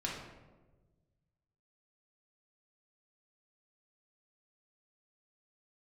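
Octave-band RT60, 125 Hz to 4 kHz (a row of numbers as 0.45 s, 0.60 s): 2.2 s, 1.6 s, 1.5 s, 1.1 s, 0.85 s, 0.65 s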